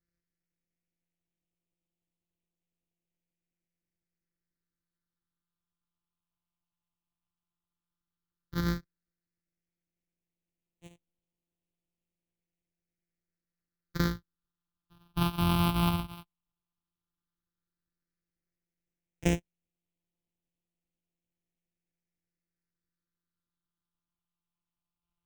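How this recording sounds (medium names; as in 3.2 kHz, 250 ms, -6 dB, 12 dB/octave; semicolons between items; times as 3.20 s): a buzz of ramps at a fixed pitch in blocks of 256 samples; phasing stages 6, 0.11 Hz, lowest notch 490–1400 Hz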